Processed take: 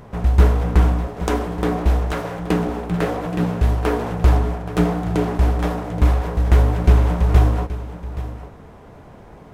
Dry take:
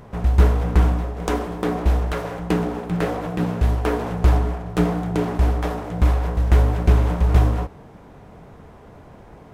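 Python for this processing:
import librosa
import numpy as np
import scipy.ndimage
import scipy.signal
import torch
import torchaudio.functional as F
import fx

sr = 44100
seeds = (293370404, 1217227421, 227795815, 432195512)

y = x + 10.0 ** (-14.0 / 20.0) * np.pad(x, (int(825 * sr / 1000.0), 0))[:len(x)]
y = y * 10.0 ** (1.5 / 20.0)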